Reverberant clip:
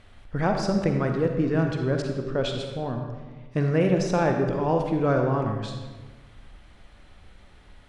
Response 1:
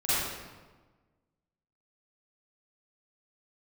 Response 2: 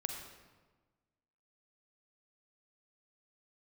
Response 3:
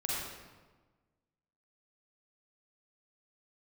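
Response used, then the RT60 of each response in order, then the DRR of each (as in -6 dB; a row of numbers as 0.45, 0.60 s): 2; 1.3, 1.3, 1.3 s; -14.5, 3.0, -5.5 dB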